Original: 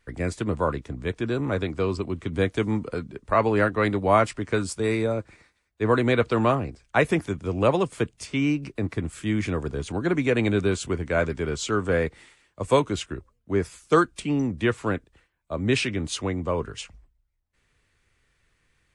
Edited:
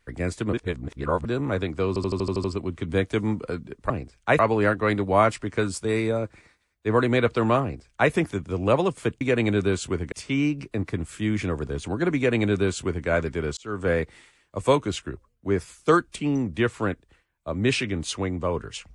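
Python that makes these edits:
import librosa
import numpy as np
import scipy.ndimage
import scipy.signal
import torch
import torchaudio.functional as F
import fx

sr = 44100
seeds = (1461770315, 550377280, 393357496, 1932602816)

y = fx.edit(x, sr, fx.reverse_span(start_s=0.53, length_s=0.72),
    fx.stutter(start_s=1.88, slice_s=0.08, count=8),
    fx.duplicate(start_s=6.57, length_s=0.49, to_s=3.34),
    fx.duplicate(start_s=10.2, length_s=0.91, to_s=8.16),
    fx.fade_in_span(start_s=11.61, length_s=0.32), tone=tone)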